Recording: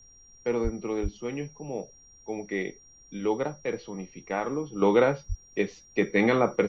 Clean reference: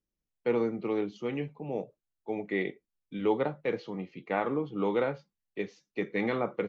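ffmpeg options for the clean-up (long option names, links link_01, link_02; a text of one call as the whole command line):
ffmpeg -i in.wav -filter_complex "[0:a]bandreject=frequency=5700:width=30,asplit=3[link_01][link_02][link_03];[link_01]afade=type=out:start_time=0.63:duration=0.02[link_04];[link_02]highpass=frequency=140:width=0.5412,highpass=frequency=140:width=1.3066,afade=type=in:start_time=0.63:duration=0.02,afade=type=out:start_time=0.75:duration=0.02[link_05];[link_03]afade=type=in:start_time=0.75:duration=0.02[link_06];[link_04][link_05][link_06]amix=inputs=3:normalize=0,asplit=3[link_07][link_08][link_09];[link_07]afade=type=out:start_time=1.02:duration=0.02[link_10];[link_08]highpass=frequency=140:width=0.5412,highpass=frequency=140:width=1.3066,afade=type=in:start_time=1.02:duration=0.02,afade=type=out:start_time=1.14:duration=0.02[link_11];[link_09]afade=type=in:start_time=1.14:duration=0.02[link_12];[link_10][link_11][link_12]amix=inputs=3:normalize=0,asplit=3[link_13][link_14][link_15];[link_13]afade=type=out:start_time=5.28:duration=0.02[link_16];[link_14]highpass=frequency=140:width=0.5412,highpass=frequency=140:width=1.3066,afade=type=in:start_time=5.28:duration=0.02,afade=type=out:start_time=5.4:duration=0.02[link_17];[link_15]afade=type=in:start_time=5.4:duration=0.02[link_18];[link_16][link_17][link_18]amix=inputs=3:normalize=0,agate=range=-21dB:threshold=-47dB,asetnsamples=nb_out_samples=441:pad=0,asendcmd='4.82 volume volume -7.5dB',volume=0dB" out.wav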